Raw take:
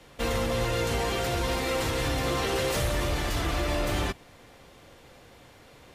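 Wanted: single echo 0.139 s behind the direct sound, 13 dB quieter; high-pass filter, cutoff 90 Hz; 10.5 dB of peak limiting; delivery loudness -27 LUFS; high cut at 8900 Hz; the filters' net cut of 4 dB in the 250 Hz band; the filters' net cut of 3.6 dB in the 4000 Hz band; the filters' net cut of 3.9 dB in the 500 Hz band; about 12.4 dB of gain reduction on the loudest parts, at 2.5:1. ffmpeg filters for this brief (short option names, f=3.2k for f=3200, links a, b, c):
-af "highpass=90,lowpass=8.9k,equalizer=f=250:t=o:g=-4,equalizer=f=500:t=o:g=-3.5,equalizer=f=4k:t=o:g=-4.5,acompressor=threshold=-47dB:ratio=2.5,alimiter=level_in=17.5dB:limit=-24dB:level=0:latency=1,volume=-17.5dB,aecho=1:1:139:0.224,volume=23.5dB"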